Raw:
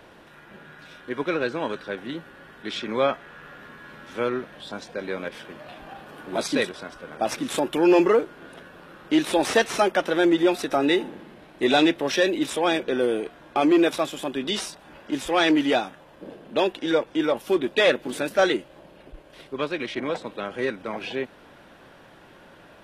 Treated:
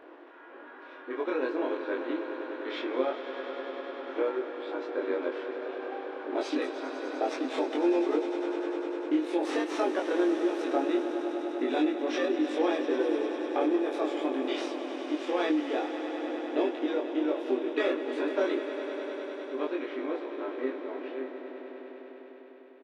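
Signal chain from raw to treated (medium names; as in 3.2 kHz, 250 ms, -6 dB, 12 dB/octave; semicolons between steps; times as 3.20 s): fade out at the end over 5.66 s; level-controlled noise filter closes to 2.7 kHz, open at -15.5 dBFS; harmonic-percussive split harmonic +4 dB; tilt EQ -2.5 dB/octave; harmony voices -7 st -4 dB; compression, threshold -20 dBFS, peak gain reduction 15 dB; brick-wall FIR high-pass 260 Hz; doubling 23 ms -2 dB; echo with a slow build-up 100 ms, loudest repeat 5, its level -13 dB; trim -6.5 dB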